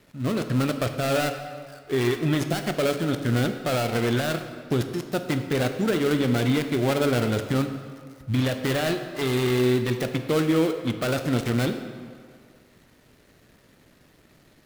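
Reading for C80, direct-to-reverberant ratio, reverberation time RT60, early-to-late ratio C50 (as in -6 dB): 9.5 dB, 7.0 dB, 2.1 s, 8.5 dB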